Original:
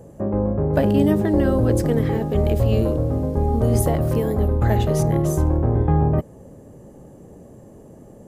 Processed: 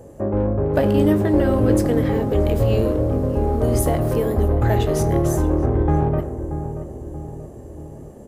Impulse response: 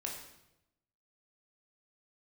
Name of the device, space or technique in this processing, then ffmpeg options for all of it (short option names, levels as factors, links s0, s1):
saturated reverb return: -filter_complex "[0:a]equalizer=f=170:t=o:w=0.44:g=-11.5,asplit=2[s0][s1];[s1]adelay=20,volume=0.251[s2];[s0][s2]amix=inputs=2:normalize=0,asplit=2[s3][s4];[1:a]atrim=start_sample=2205[s5];[s4][s5]afir=irnorm=-1:irlink=0,asoftclip=type=tanh:threshold=0.0708,volume=0.447[s6];[s3][s6]amix=inputs=2:normalize=0,asplit=2[s7][s8];[s8]adelay=631,lowpass=f=930:p=1,volume=0.355,asplit=2[s9][s10];[s10]adelay=631,lowpass=f=930:p=1,volume=0.54,asplit=2[s11][s12];[s12]adelay=631,lowpass=f=930:p=1,volume=0.54,asplit=2[s13][s14];[s14]adelay=631,lowpass=f=930:p=1,volume=0.54,asplit=2[s15][s16];[s16]adelay=631,lowpass=f=930:p=1,volume=0.54,asplit=2[s17][s18];[s18]adelay=631,lowpass=f=930:p=1,volume=0.54[s19];[s7][s9][s11][s13][s15][s17][s19]amix=inputs=7:normalize=0"